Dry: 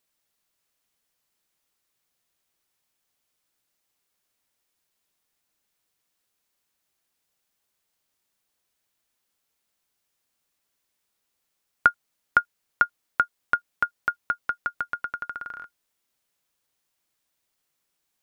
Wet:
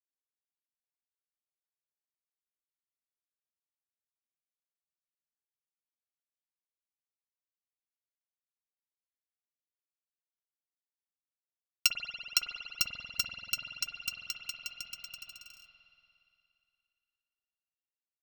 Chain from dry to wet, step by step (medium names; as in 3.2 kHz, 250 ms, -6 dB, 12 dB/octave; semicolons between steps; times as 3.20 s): bit-reversed sample order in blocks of 128 samples; power-law waveshaper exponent 1.4; spring tank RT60 2.8 s, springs 47 ms, chirp 25 ms, DRR 2 dB; trim -6.5 dB